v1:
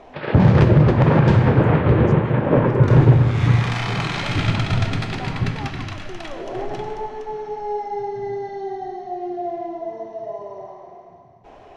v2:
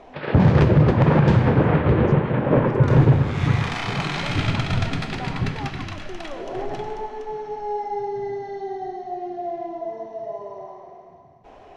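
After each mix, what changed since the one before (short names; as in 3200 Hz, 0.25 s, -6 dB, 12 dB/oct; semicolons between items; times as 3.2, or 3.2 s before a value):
speech: add LPF 5100 Hz 12 dB/oct; reverb: off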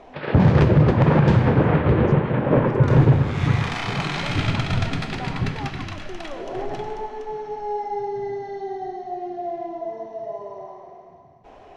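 none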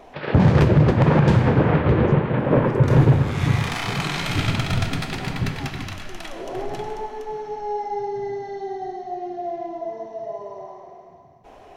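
speech -6.0 dB; master: remove air absorption 71 m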